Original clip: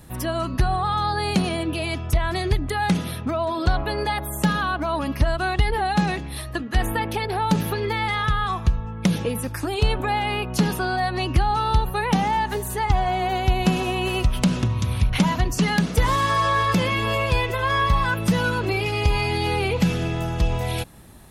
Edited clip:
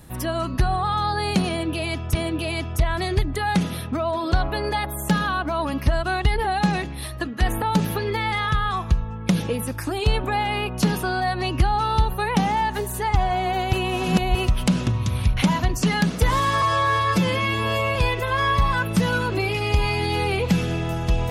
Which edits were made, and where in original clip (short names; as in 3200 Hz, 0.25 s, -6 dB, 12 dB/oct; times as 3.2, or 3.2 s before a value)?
1.49–2.15 loop, 2 plays
6.96–7.38 cut
13.49–14.11 reverse
16.38–17.27 stretch 1.5×